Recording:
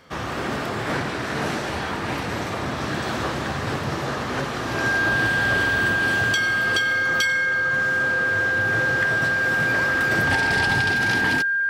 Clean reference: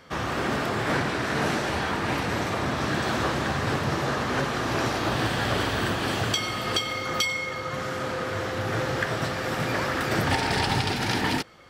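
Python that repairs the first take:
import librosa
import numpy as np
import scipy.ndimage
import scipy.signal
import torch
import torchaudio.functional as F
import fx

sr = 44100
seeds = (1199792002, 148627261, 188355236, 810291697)

y = fx.fix_declick_ar(x, sr, threshold=6.5)
y = fx.notch(y, sr, hz=1600.0, q=30.0)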